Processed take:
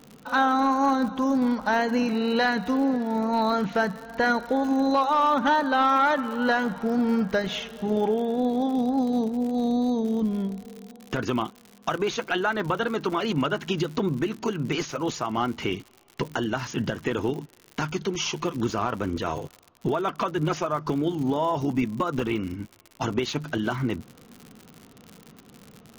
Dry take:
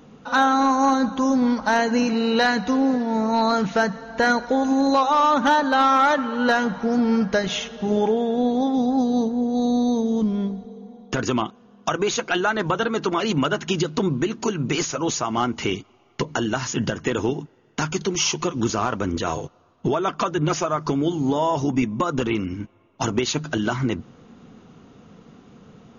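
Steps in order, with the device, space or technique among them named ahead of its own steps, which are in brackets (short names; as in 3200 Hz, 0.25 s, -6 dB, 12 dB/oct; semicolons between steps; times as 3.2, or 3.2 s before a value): lo-fi chain (LPF 4400 Hz 12 dB/oct; wow and flutter 27 cents; crackle 96/s -30 dBFS); gain -3.5 dB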